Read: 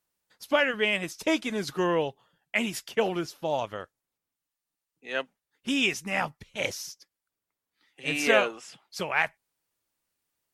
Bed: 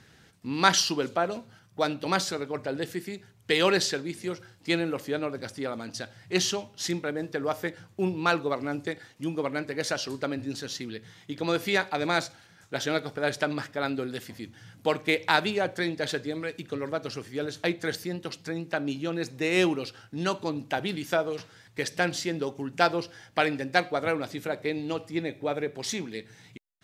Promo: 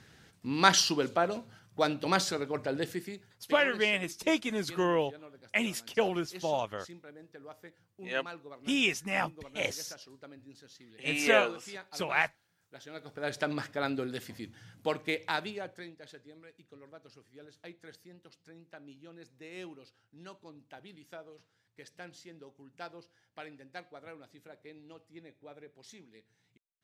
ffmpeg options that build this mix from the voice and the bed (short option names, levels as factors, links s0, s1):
-filter_complex "[0:a]adelay=3000,volume=0.75[s0];[1:a]volume=5.96,afade=t=out:st=2.83:d=0.71:silence=0.11885,afade=t=in:st=12.92:d=0.64:silence=0.141254,afade=t=out:st=14.4:d=1.56:silence=0.11885[s1];[s0][s1]amix=inputs=2:normalize=0"